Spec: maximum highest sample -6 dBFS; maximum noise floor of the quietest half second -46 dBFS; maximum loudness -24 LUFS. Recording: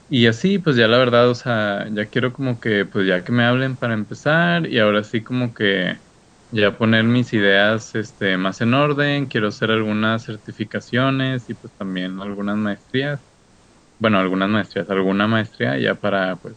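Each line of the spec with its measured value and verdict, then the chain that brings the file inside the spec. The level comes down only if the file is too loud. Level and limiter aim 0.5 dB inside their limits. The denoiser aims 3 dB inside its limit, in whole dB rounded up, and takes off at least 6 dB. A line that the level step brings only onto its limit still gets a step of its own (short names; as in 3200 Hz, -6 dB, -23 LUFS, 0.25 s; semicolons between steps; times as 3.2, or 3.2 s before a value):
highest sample -1.5 dBFS: fail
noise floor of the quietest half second -52 dBFS: OK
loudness -19.0 LUFS: fail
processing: gain -5.5 dB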